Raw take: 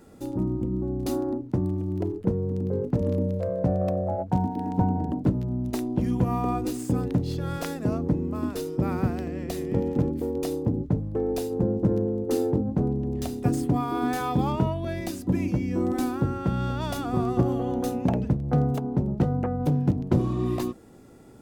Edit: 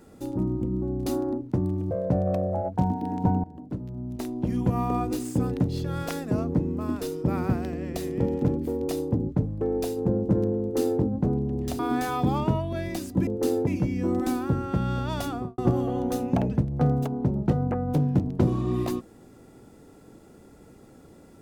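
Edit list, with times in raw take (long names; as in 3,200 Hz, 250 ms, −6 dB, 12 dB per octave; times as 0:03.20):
0:01.91–0:03.45: remove
0:04.98–0:06.32: fade in, from −19 dB
0:12.15–0:12.55: duplicate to 0:15.39
0:13.33–0:13.91: remove
0:17.00–0:17.30: fade out and dull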